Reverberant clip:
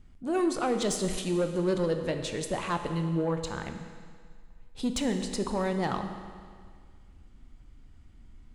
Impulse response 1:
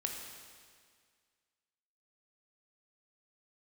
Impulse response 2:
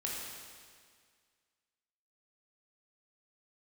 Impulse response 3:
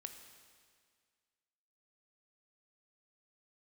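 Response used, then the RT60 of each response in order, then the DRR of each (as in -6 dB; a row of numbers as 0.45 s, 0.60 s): 3; 1.9 s, 1.9 s, 1.9 s; 1.0 dB, -4.0 dB, 6.0 dB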